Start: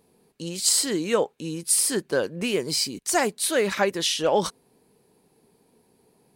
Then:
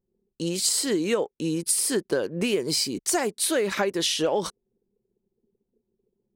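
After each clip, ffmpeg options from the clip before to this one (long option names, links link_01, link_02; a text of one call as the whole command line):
ffmpeg -i in.wav -af "anlmdn=0.0158,equalizer=frequency=370:width=1.6:gain=4.5,acompressor=threshold=-24dB:ratio=6,volume=3dB" out.wav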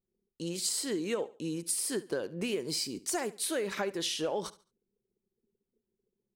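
ffmpeg -i in.wav -af "aecho=1:1:71|142|213:0.119|0.0357|0.0107,volume=-8.5dB" out.wav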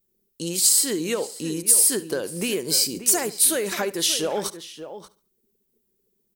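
ffmpeg -i in.wav -filter_complex "[0:a]aemphasis=mode=production:type=50fm,aeval=exprs='0.422*sin(PI/2*1.41*val(0)/0.422)':channel_layout=same,asplit=2[link_01][link_02];[link_02]adelay=583.1,volume=-11dB,highshelf=frequency=4000:gain=-13.1[link_03];[link_01][link_03]amix=inputs=2:normalize=0" out.wav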